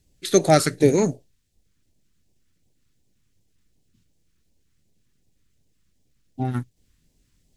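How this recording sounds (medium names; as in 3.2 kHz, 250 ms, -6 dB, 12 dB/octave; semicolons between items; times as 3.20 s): phasing stages 2, 2.7 Hz, lowest notch 640–1300 Hz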